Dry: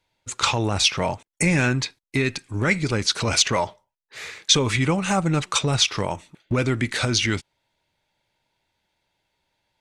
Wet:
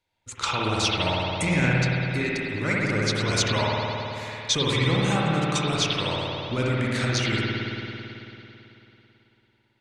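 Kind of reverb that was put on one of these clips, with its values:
spring reverb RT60 3.1 s, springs 55 ms, chirp 50 ms, DRR −5 dB
level −7 dB

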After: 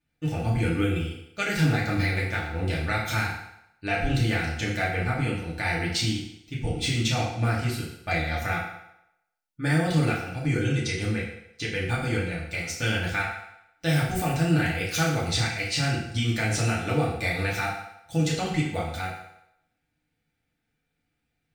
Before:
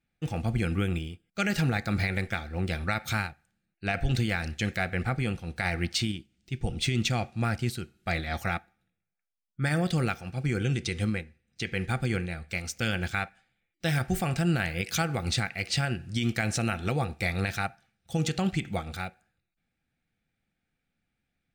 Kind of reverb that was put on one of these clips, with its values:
feedback delay network reverb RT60 0.81 s, low-frequency decay 0.75×, high-frequency decay 0.9×, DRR −5.5 dB
level −3 dB

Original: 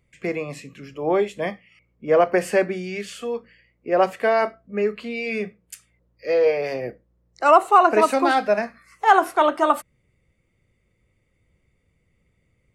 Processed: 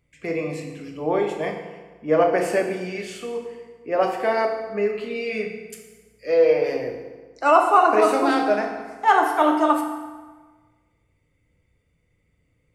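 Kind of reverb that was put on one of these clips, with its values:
feedback delay network reverb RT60 1.4 s, low-frequency decay 1×, high-frequency decay 0.75×, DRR 1.5 dB
level −3 dB

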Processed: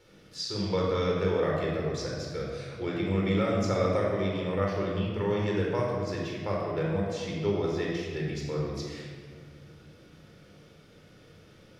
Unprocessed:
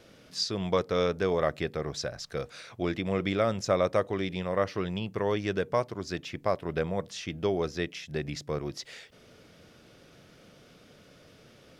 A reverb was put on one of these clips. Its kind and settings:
rectangular room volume 2,300 cubic metres, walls mixed, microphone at 4.3 metres
level −7.5 dB

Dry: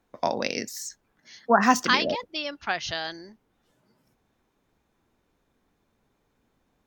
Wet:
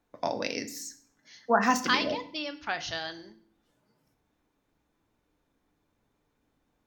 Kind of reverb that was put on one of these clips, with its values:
feedback delay network reverb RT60 0.53 s, low-frequency decay 1.5×, high-frequency decay 0.95×, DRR 8.5 dB
level −4.5 dB

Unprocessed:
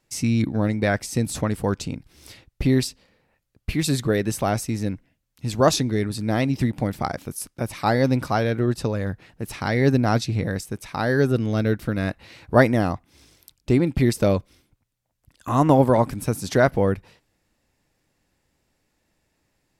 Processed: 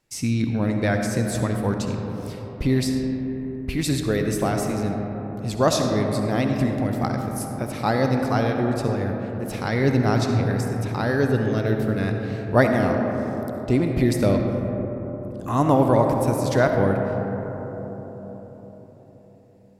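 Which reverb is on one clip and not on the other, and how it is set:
comb and all-pass reverb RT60 4.7 s, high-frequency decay 0.25×, pre-delay 25 ms, DRR 3 dB
level −2 dB

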